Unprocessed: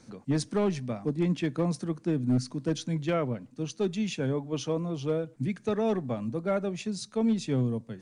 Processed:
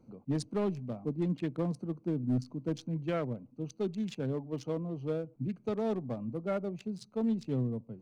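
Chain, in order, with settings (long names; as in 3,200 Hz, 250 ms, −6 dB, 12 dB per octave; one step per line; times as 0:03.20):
adaptive Wiener filter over 25 samples
level −4.5 dB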